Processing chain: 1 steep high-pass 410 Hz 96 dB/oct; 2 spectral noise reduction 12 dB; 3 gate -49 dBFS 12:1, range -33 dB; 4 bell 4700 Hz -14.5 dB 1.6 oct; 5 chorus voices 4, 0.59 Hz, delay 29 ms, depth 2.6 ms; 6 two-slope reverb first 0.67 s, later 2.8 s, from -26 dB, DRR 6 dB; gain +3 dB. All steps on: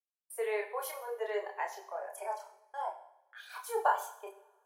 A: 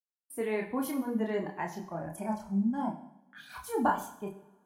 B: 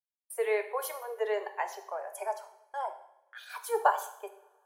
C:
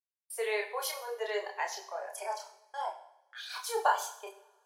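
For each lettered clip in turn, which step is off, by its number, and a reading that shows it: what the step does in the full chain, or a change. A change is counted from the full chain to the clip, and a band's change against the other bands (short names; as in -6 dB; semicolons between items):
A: 1, crest factor change -3.0 dB; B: 5, crest factor change +1.5 dB; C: 4, 4 kHz band +9.0 dB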